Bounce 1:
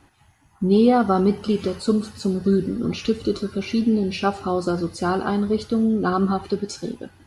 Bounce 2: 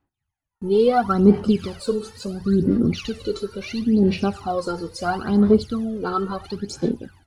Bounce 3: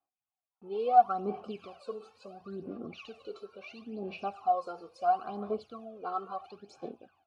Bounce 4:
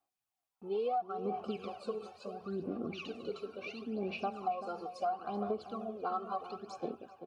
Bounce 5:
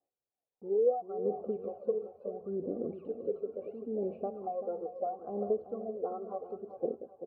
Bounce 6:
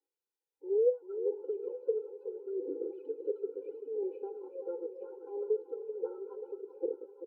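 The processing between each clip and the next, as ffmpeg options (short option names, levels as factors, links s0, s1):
-af "agate=range=0.0447:threshold=0.00447:ratio=16:detection=peak,aphaser=in_gain=1:out_gain=1:delay=2.3:decay=0.73:speed=0.73:type=sinusoidal,volume=0.631"
-filter_complex "[0:a]asplit=3[s0][s1][s2];[s0]bandpass=f=730:t=q:w=8,volume=1[s3];[s1]bandpass=f=1090:t=q:w=8,volume=0.501[s4];[s2]bandpass=f=2440:t=q:w=8,volume=0.355[s5];[s3][s4][s5]amix=inputs=3:normalize=0,adynamicequalizer=threshold=0.00251:dfrequency=4600:dqfactor=0.7:tfrequency=4600:tqfactor=0.7:attack=5:release=100:ratio=0.375:range=2.5:mode=boostabove:tftype=highshelf"
-filter_complex "[0:a]acompressor=threshold=0.02:ratio=16,asplit=2[s0][s1];[s1]adelay=387,lowpass=f=1600:p=1,volume=0.316,asplit=2[s2][s3];[s3]adelay=387,lowpass=f=1600:p=1,volume=0.37,asplit=2[s4][s5];[s5]adelay=387,lowpass=f=1600:p=1,volume=0.37,asplit=2[s6][s7];[s7]adelay=387,lowpass=f=1600:p=1,volume=0.37[s8];[s0][s2][s4][s6][s8]amix=inputs=5:normalize=0,volume=1.41"
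-af "lowpass=f=510:t=q:w=3.9,volume=0.75"
-af "aecho=1:1:868|1736|2604|3472:0.168|0.0823|0.0403|0.0198,afftfilt=real='re*eq(mod(floor(b*sr/1024/260),2),1)':imag='im*eq(mod(floor(b*sr/1024/260),2),1)':win_size=1024:overlap=0.75"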